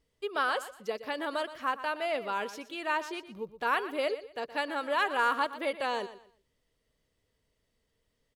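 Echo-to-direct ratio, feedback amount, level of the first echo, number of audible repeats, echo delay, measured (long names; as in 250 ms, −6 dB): −13.5 dB, 27%, −14.0 dB, 2, 120 ms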